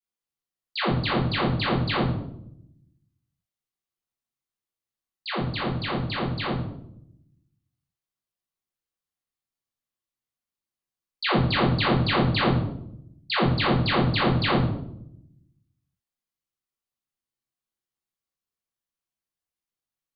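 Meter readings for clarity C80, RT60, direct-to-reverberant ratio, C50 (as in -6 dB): 7.5 dB, 0.75 s, -8.0 dB, 3.0 dB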